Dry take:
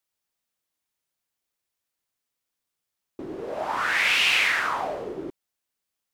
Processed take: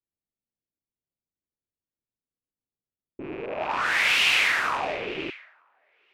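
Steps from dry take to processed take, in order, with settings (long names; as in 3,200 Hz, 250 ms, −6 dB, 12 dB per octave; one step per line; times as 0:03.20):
loose part that buzzes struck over −46 dBFS, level −23 dBFS
delay with a high-pass on its return 935 ms, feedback 54%, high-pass 2,300 Hz, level −12 dB
low-pass that shuts in the quiet parts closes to 350 Hz, open at −21 dBFS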